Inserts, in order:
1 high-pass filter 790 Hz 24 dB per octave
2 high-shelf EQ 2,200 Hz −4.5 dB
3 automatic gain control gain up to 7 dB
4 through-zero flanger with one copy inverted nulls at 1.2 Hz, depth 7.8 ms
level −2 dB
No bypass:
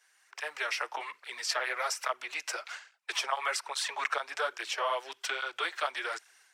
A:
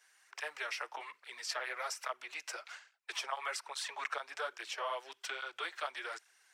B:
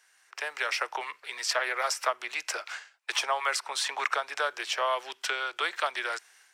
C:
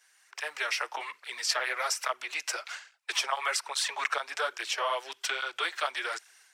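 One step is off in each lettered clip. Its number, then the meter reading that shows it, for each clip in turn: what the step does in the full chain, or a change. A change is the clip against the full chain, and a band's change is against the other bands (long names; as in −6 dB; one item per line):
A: 3, change in momentary loudness spread −1 LU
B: 4, change in integrated loudness +3.0 LU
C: 2, 8 kHz band +3.0 dB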